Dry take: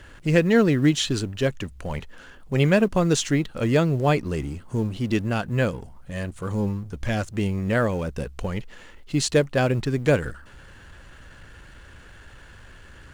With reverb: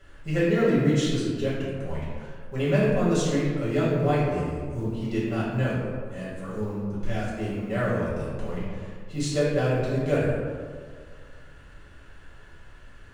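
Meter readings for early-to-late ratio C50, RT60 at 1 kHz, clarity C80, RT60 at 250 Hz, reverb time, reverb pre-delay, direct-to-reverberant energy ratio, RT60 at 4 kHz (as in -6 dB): -1.0 dB, 1.7 s, 1.5 dB, 1.9 s, 1.8 s, 3 ms, -10.0 dB, 0.85 s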